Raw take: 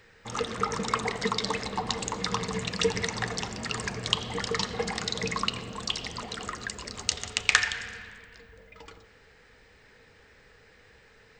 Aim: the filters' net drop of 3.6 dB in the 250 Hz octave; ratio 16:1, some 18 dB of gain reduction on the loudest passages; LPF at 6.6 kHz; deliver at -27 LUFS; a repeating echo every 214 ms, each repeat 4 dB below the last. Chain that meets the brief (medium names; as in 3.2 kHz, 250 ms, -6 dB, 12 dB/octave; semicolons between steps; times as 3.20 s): low-pass 6.6 kHz; peaking EQ 250 Hz -5 dB; compression 16:1, threshold -36 dBFS; feedback delay 214 ms, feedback 63%, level -4 dB; trim +12 dB